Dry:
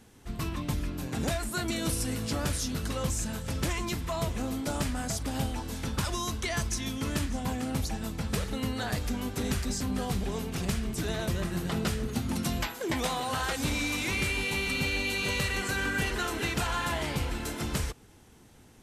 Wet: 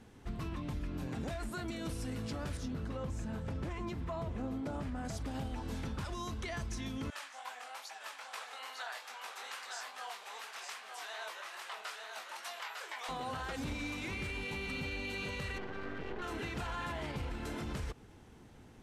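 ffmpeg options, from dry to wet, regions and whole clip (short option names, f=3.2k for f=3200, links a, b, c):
-filter_complex "[0:a]asettb=1/sr,asplit=3[a][b][c];[a]atrim=end=2.574[d];[b]atrim=start=2.57:end=5.05,asetpts=PTS-STARTPTS,afade=t=in:d=0.004:c=qsin,afade=t=out:st=2.476:d=0.004:c=qsin,highpass=49,highshelf=f=2.3k:g=-10[e];[c]atrim=start=5.046[f];[d][e]acrossfade=d=0.004:c1=hsin:c2=qsin[g];[g][f]acrossfade=d=0.004:c1=qsin:c2=hsin,asettb=1/sr,asplit=3[h][i][j];[h]atrim=end=7.104[k];[i]atrim=start=7.1:end=13.09,asetpts=PTS-STARTPTS,afade=t=in:d=0.004:c=qsin,afade=t=out:st=5.986:d=0.004:c=qsin,highpass=f=790:w=0.5412,highpass=f=790:w=1.3066,flanger=delay=18.5:depth=7.1:speed=2.4,aecho=1:1:902:0.596,atrim=end_sample=264159[l];[j]atrim=start=13.086[m];[k][l]acrossfade=d=0.004:c1=hsin:c2=qsin[n];[n][m]acrossfade=d=0.004:c1=qsin:c2=hsin,asettb=1/sr,asplit=3[o][p][q];[o]atrim=end=15.584[r];[p]atrim=start=15.58:end=16.22,asetpts=PTS-STARTPTS,afade=t=in:d=0.004:c=qsin,afade=t=out:st=0.636:d=0.004:c=qsin,lowpass=f=3.7k:w=0.5412,lowpass=f=3.7k:w=1.3066,equalizer=f=400:t=o:w=1.8:g=12,aeval=exprs='max(val(0),0)':c=same[s];[q]atrim=start=16.216[t];[r][s]acrossfade=d=0.004:c1=hsin:c2=qsin[u];[u][t]acrossfade=d=0.004:c1=qsin:c2=hsin,lowpass=f=2.6k:p=1,alimiter=level_in=7dB:limit=-24dB:level=0:latency=1:release=144,volume=-7dB"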